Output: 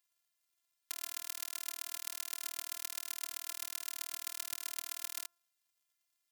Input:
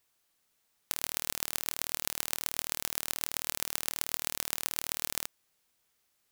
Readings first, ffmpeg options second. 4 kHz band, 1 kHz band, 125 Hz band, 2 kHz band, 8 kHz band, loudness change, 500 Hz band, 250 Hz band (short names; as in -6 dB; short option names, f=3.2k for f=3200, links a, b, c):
-7.0 dB, -10.0 dB, under -20 dB, -8.0 dB, -7.0 dB, -7.0 dB, -14.0 dB, -17.0 dB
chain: -af "lowpass=f=1.1k:p=1,aderivative,bandreject=f=221.3:t=h:w=4,bandreject=f=442.6:t=h:w=4,bandreject=f=663.9:t=h:w=4,bandreject=f=885.2:t=h:w=4,bandreject=f=1.1065k:t=h:w=4,bandreject=f=1.3278k:t=h:w=4,bandreject=f=1.5491k:t=h:w=4,afftfilt=real='hypot(re,im)*cos(PI*b)':imag='0':win_size=512:overlap=0.75,acrusher=bits=3:mode=log:mix=0:aa=0.000001,volume=12.5dB"